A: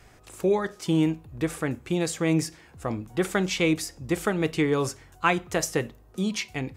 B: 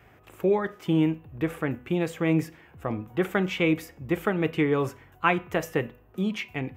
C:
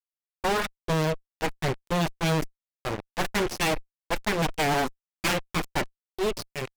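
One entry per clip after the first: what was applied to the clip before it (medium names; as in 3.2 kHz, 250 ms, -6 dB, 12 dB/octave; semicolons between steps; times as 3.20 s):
high-pass 67 Hz; high-order bell 6.5 kHz -14.5 dB; de-hum 247 Hz, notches 12
spectral noise reduction 20 dB; Chebyshev shaper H 4 -10 dB, 7 -16 dB, 8 -21 dB, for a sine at -7 dBFS; fuzz box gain 39 dB, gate -40 dBFS; trim -8.5 dB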